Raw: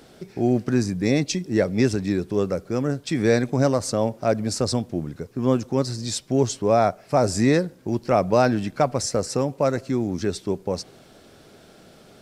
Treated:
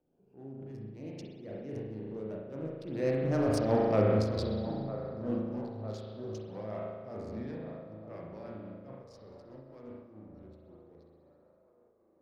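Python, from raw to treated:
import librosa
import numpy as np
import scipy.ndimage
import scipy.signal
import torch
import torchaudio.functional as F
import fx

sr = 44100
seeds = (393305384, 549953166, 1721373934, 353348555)

y = fx.wiener(x, sr, points=25)
y = fx.doppler_pass(y, sr, speed_mps=29, closest_m=8.2, pass_at_s=3.8)
y = fx.peak_eq(y, sr, hz=7500.0, db=-14.0, octaves=0.6)
y = fx.transient(y, sr, attack_db=-5, sustain_db=6)
y = fx.rotary(y, sr, hz=5.0)
y = fx.echo_wet_bandpass(y, sr, ms=954, feedback_pct=53, hz=730.0, wet_db=-11.0)
y = fx.rev_spring(y, sr, rt60_s=1.6, pass_ms=(37,), chirp_ms=30, drr_db=-3.0)
y = fx.am_noise(y, sr, seeds[0], hz=5.7, depth_pct=60)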